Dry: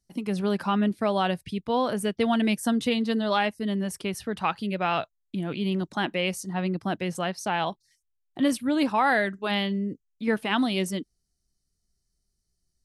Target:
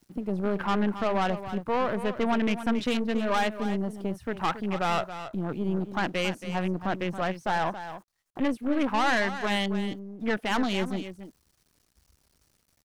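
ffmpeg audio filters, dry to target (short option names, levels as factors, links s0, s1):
-af "aeval=exprs='val(0)+0.5*0.0126*sgn(val(0))':c=same,highpass=42,equalizer=f=1200:w=0.75:g=5,aeval=exprs='val(0)*gte(abs(val(0)),0.00891)':c=same,afwtdn=0.0224,aeval=exprs='(tanh(11.2*val(0)+0.65)-tanh(0.65))/11.2':c=same,aecho=1:1:276:0.266"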